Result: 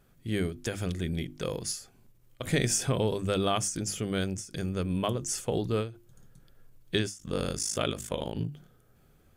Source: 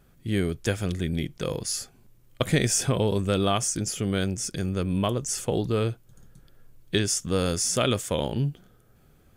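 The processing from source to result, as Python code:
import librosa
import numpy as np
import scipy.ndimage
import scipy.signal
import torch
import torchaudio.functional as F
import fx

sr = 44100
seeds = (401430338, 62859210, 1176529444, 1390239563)

y = fx.hum_notches(x, sr, base_hz=50, count=7)
y = fx.ring_mod(y, sr, carrier_hz=26.0, at=(7.17, 8.49))
y = fx.end_taper(y, sr, db_per_s=150.0)
y = y * 10.0 ** (-3.0 / 20.0)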